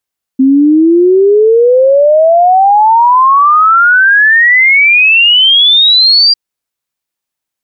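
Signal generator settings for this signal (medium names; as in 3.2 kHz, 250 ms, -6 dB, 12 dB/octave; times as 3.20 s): log sweep 260 Hz -> 4.8 kHz 5.95 s -3 dBFS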